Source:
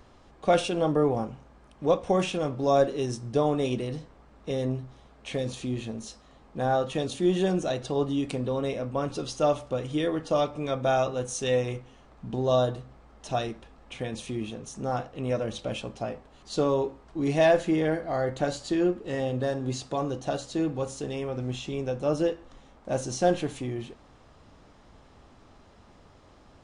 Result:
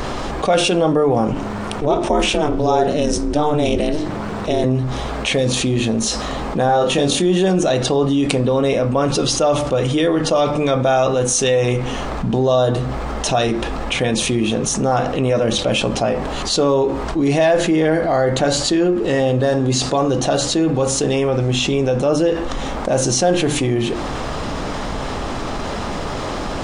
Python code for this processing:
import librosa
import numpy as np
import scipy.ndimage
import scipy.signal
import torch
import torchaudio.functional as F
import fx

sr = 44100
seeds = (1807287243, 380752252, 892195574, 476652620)

y = fx.ring_mod(x, sr, carrier_hz=150.0, at=(1.33, 4.64))
y = fx.doubler(y, sr, ms=28.0, db=-4, at=(6.66, 7.22))
y = fx.peak_eq(y, sr, hz=85.0, db=-6.5, octaves=0.71)
y = fx.hum_notches(y, sr, base_hz=50, count=7)
y = fx.env_flatten(y, sr, amount_pct=70)
y = y * 10.0 ** (5.0 / 20.0)